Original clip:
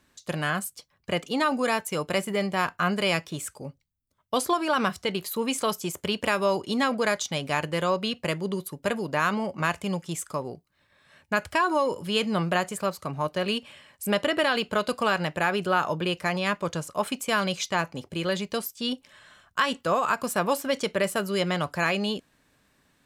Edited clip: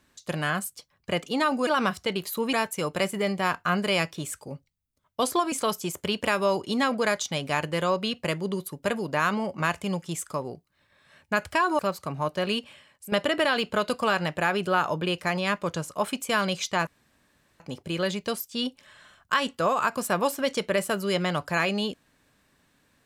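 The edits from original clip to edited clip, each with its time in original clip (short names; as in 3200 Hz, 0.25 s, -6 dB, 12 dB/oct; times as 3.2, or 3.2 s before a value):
4.66–5.52 move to 1.67
11.79–12.78 cut
13.58–14.11 fade out, to -12 dB
17.86 insert room tone 0.73 s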